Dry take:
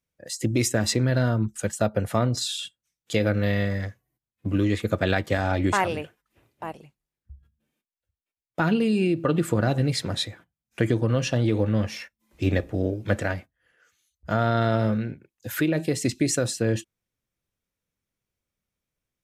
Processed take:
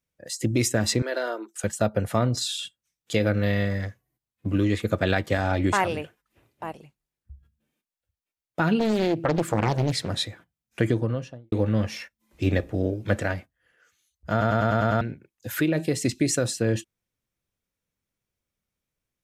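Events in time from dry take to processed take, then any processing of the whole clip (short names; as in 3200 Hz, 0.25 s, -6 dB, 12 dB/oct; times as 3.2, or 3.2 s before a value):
1.02–1.64 steep high-pass 320 Hz 48 dB/oct
8.79–10.09 Doppler distortion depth 0.83 ms
10.83–11.52 studio fade out
14.31 stutter in place 0.10 s, 7 plays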